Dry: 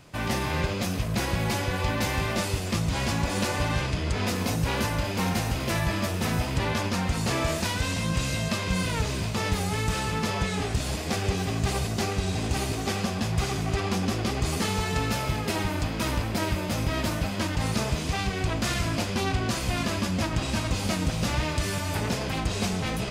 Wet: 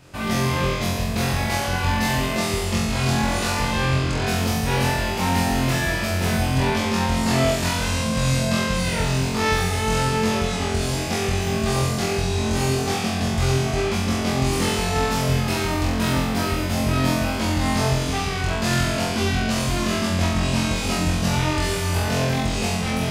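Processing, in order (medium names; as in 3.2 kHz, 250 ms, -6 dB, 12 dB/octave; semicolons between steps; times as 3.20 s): flutter echo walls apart 3.9 m, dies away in 0.95 s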